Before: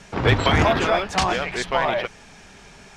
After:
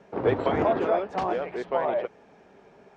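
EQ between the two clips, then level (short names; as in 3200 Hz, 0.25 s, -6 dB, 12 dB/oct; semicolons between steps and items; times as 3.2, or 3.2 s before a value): band-pass 460 Hz, Q 1.3; 0.0 dB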